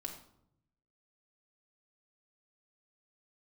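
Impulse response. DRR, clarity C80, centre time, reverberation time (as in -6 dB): 1.0 dB, 10.5 dB, 20 ms, 0.75 s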